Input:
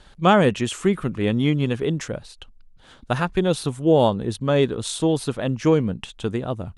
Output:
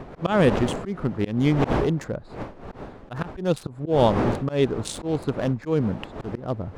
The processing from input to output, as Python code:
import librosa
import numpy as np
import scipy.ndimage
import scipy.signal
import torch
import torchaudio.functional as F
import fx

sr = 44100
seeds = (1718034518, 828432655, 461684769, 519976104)

y = fx.wiener(x, sr, points=15)
y = fx.dmg_wind(y, sr, seeds[0], corner_hz=600.0, level_db=-30.0)
y = fx.auto_swell(y, sr, attack_ms=151.0)